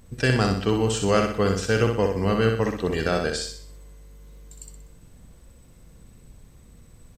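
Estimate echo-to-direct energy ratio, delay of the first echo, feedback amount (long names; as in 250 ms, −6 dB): −4.0 dB, 62 ms, 44%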